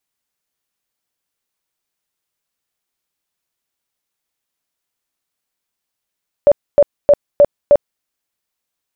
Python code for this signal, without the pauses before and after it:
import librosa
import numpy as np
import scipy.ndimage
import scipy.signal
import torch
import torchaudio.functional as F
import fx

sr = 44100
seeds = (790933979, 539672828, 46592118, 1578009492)

y = fx.tone_burst(sr, hz=578.0, cycles=27, every_s=0.31, bursts=5, level_db=-4.0)